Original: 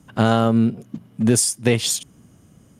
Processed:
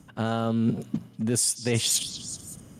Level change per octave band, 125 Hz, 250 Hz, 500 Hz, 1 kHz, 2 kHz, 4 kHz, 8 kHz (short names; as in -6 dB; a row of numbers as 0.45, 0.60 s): -7.5, -8.0, -9.0, -10.0, -8.5, -3.0, -3.5 dB